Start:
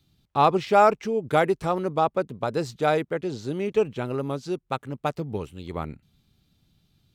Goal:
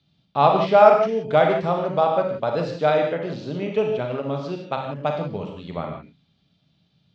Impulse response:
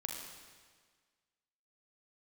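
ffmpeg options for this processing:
-filter_complex "[0:a]highpass=110,equalizer=f=170:t=q:w=4:g=4,equalizer=f=340:t=q:w=4:g=-5,equalizer=f=620:t=q:w=4:g=7,equalizer=f=3.1k:t=q:w=4:g=3,lowpass=f=5.1k:w=0.5412,lowpass=f=5.1k:w=1.3066[a];[1:a]atrim=start_sample=2205,afade=t=out:st=0.23:d=0.01,atrim=end_sample=10584[b];[a][b]afir=irnorm=-1:irlink=0,volume=2dB"

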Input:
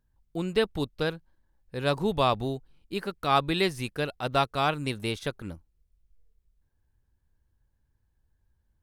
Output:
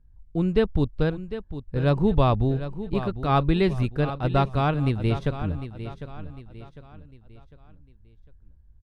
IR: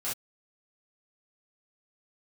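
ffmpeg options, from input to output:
-af "aemphasis=mode=reproduction:type=riaa,aecho=1:1:752|1504|2256|3008:0.251|0.1|0.0402|0.0161"

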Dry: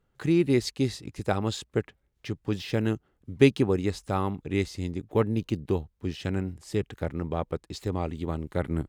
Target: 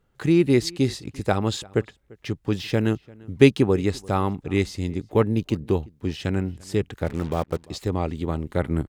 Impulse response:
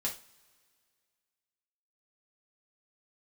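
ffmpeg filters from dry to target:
-filter_complex "[0:a]asplit=3[a][b][c];[a]afade=t=out:st=7.05:d=0.02[d];[b]acrusher=bits=6:mix=0:aa=0.5,afade=t=in:st=7.05:d=0.02,afade=t=out:st=7.58:d=0.02[e];[c]afade=t=in:st=7.58:d=0.02[f];[d][e][f]amix=inputs=3:normalize=0,asplit=2[g][h];[h]adelay=344,volume=-24dB,highshelf=f=4k:g=-7.74[i];[g][i]amix=inputs=2:normalize=0,volume=4.5dB"

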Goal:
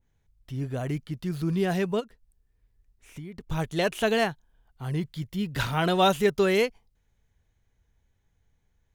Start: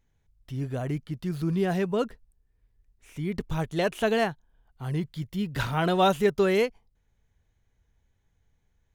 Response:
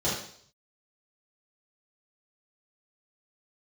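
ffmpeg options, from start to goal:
-filter_complex "[0:a]asplit=3[a][b][c];[a]afade=t=out:st=1.99:d=0.02[d];[b]acompressor=threshold=-37dB:ratio=10,afade=t=in:st=1.99:d=0.02,afade=t=out:st=3.46:d=0.02[e];[c]afade=t=in:st=3.46:d=0.02[f];[d][e][f]amix=inputs=3:normalize=0,adynamicequalizer=threshold=0.00891:dfrequency=1900:dqfactor=0.7:tfrequency=1900:tqfactor=0.7:attack=5:release=100:ratio=0.375:range=2:mode=boostabove:tftype=highshelf"

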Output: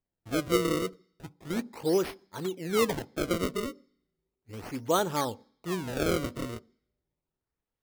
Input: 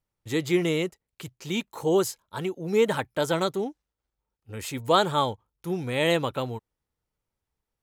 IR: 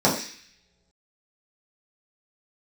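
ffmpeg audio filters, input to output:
-filter_complex "[0:a]equalizer=f=290:t=o:w=0.91:g=5.5,acrusher=samples=30:mix=1:aa=0.000001:lfo=1:lforange=48:lforate=0.35,asplit=2[a][b];[1:a]atrim=start_sample=2205,asetrate=39690,aresample=44100[c];[b][c]afir=irnorm=-1:irlink=0,volume=-39dB[d];[a][d]amix=inputs=2:normalize=0,volume=-6.5dB"

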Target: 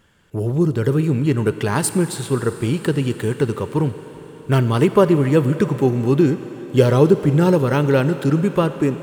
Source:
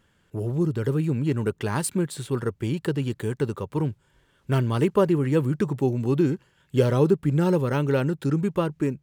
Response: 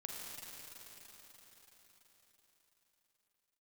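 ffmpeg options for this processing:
-filter_complex "[0:a]asplit=2[a][b];[1:a]atrim=start_sample=2205,lowshelf=f=250:g=-8.5[c];[b][c]afir=irnorm=-1:irlink=0,volume=-5dB[d];[a][d]amix=inputs=2:normalize=0,volume=5dB"

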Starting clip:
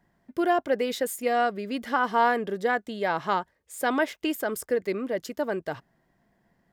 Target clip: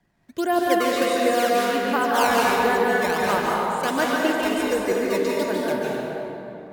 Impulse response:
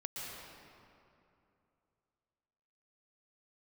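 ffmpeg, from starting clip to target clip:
-filter_complex "[0:a]lowpass=7.6k,acrossover=split=200|1100|4900[a][b][c][d];[b]acrusher=samples=16:mix=1:aa=0.000001:lfo=1:lforange=25.6:lforate=1.4[e];[a][e][c][d]amix=inputs=4:normalize=0[f];[1:a]atrim=start_sample=2205,asetrate=36162,aresample=44100[g];[f][g]afir=irnorm=-1:irlink=0,volume=4dB"

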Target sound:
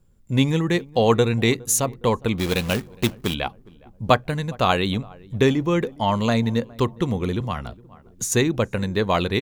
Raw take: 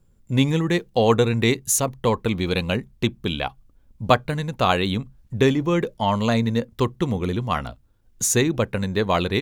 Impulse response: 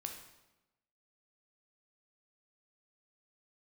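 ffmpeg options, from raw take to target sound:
-filter_complex "[0:a]asplit=3[a][b][c];[a]afade=t=out:st=2.38:d=0.02[d];[b]acrusher=bits=2:mode=log:mix=0:aa=0.000001,afade=t=in:st=2.38:d=0.02,afade=t=out:st=3.33:d=0.02[e];[c]afade=t=in:st=3.33:d=0.02[f];[d][e][f]amix=inputs=3:normalize=0,asplit=2[g][h];[h]adelay=412,lowpass=f=1k:p=1,volume=-22.5dB,asplit=2[i][j];[j]adelay=412,lowpass=f=1k:p=1,volume=0.49,asplit=2[k][l];[l]adelay=412,lowpass=f=1k:p=1,volume=0.49[m];[g][i][k][m]amix=inputs=4:normalize=0,asettb=1/sr,asplit=3[n][o][p];[n]atrim=end=7.404[q];[o]atrim=start=7.4:end=8.32,asetpts=PTS-STARTPTS,afade=t=in:d=0.004:c=qsin,afade=t=out:st=0.916:d=0.004:c=qsin,acrossover=split=180[r][s];[s]acompressor=threshold=-25dB:ratio=6[t];[r][t]amix=inputs=2:normalize=0[u];[p]atrim=start=8.316[v];[q][u]acrossfade=d=0.004:c1=hsin:c2=qsin[w];[w][v]acrossfade=d=0.004:c1=qsin:c2=hsin"

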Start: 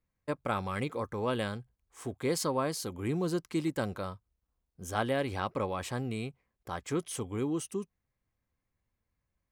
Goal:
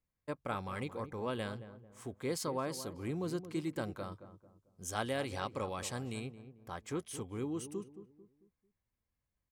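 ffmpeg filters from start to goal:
-filter_complex "[0:a]asettb=1/sr,asplit=3[a][b][c];[a]atrim=end=4.124[d];[b]atrim=start=4.12:end=6.2,asetpts=PTS-STARTPTS,afade=t=in:d=0.004:c=qsin,afade=t=out:st=2.076:d=0.004:c=qsin,equalizer=f=7.1k:t=o:w=2:g=9[e];[c]atrim=start=6.196[f];[d][e]acrossfade=d=0.004:c1=hsin:c2=qsin[g];[g][f]acrossfade=d=0.004:c1=qsin:c2=hsin,asplit=2[h][i];[i]adelay=222,lowpass=f=930:p=1,volume=-11dB,asplit=2[j][k];[k]adelay=222,lowpass=f=930:p=1,volume=0.4,asplit=2[l][m];[m]adelay=222,lowpass=f=930:p=1,volume=0.4,asplit=2[n][o];[o]adelay=222,lowpass=f=930:p=1,volume=0.4[p];[h][j][l][n][p]amix=inputs=5:normalize=0,volume=-6dB"

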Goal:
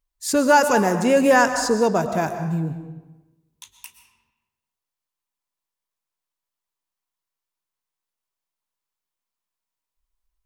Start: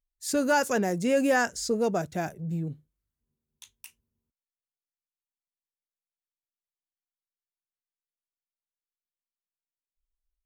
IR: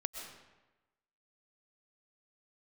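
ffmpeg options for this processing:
-filter_complex "[0:a]asplit=2[a][b];[b]equalizer=f=1k:t=o:w=0.47:g=12.5[c];[1:a]atrim=start_sample=2205[d];[c][d]afir=irnorm=-1:irlink=0,volume=2dB[e];[a][e]amix=inputs=2:normalize=0"

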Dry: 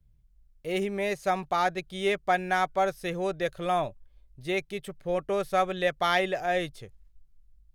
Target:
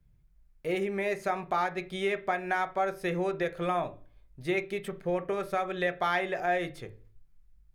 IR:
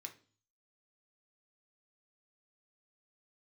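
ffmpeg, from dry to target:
-filter_complex "[0:a]acompressor=threshold=-33dB:ratio=3,asplit=2[a][b];[1:a]atrim=start_sample=2205,lowpass=2.5k[c];[b][c]afir=irnorm=-1:irlink=0,volume=7dB[d];[a][d]amix=inputs=2:normalize=0"

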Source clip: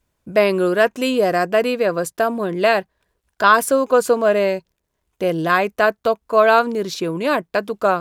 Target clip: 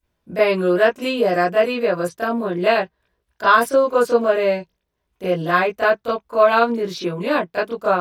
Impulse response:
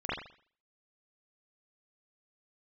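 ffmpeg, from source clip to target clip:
-filter_complex "[0:a]highshelf=f=10k:g=8.5[a];[1:a]atrim=start_sample=2205,atrim=end_sample=3528,asetrate=70560,aresample=44100[b];[a][b]afir=irnorm=-1:irlink=0,volume=-3.5dB"

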